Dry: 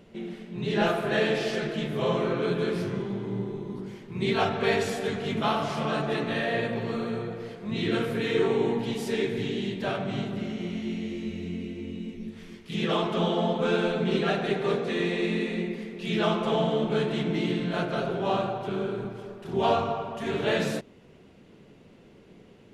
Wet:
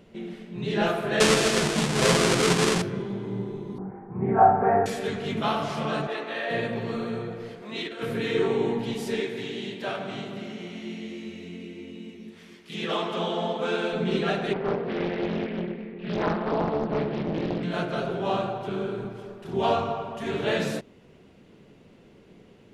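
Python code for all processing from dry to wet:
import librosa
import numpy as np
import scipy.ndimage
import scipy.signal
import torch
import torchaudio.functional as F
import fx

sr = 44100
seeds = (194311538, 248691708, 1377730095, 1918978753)

y = fx.chain(x, sr, fx.halfwave_hold(),
    fx.lowpass(hz=9400.0, slope=24),
    fx.high_shelf(hz=2100.0, db=8.0), at=(1.2, 2.82))
y = fx.chain(y, sr, fx.steep_lowpass(hz=1600.0, slope=36),
    fx.peak_eq(hz=770.0, db=14.5, octaves=0.32),
    fx.room_flutter(wall_m=5.4, rt60_s=0.29), at=(3.78, 4.86))
y = fx.chain(y, sr, fx.highpass(hz=460.0, slope=12),
    fx.high_shelf(hz=6100.0, db=-9.5), at=(6.07, 6.5))
y = fx.chain(y, sr, fx.highpass(hz=400.0, slope=12),
    fx.over_compress(threshold_db=-33.0, ratio=-0.5), at=(7.62, 8.03))
y = fx.chain(y, sr, fx.highpass(hz=360.0, slope=6),
    fx.echo_single(ms=175, db=-12.0), at=(9.2, 13.93))
y = fx.chain(y, sr, fx.bessel_lowpass(hz=1900.0, order=4),
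    fx.doppler_dist(depth_ms=0.82), at=(14.53, 17.63))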